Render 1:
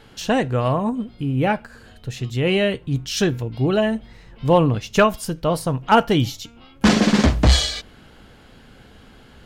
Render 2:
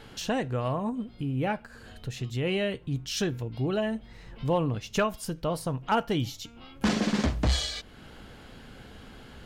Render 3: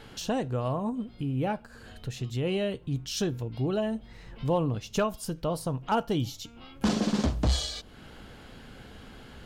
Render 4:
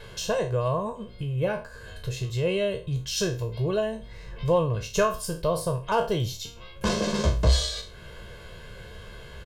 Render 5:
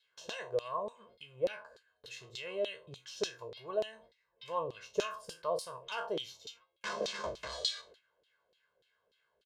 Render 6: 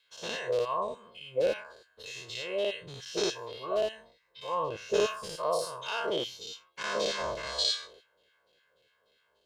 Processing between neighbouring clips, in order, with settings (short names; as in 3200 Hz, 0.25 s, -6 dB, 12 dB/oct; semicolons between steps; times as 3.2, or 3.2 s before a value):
compressor 1.5:1, threshold -42 dBFS, peak gain reduction 11.5 dB
dynamic EQ 2000 Hz, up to -8 dB, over -50 dBFS, Q 1.5
spectral trails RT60 0.34 s; comb 1.9 ms, depth 99%
gate with hold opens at -30 dBFS; LFO band-pass saw down 3.4 Hz 420–4000 Hz; tone controls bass -2 dB, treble +10 dB; gain -2.5 dB
spectral dilation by 0.12 s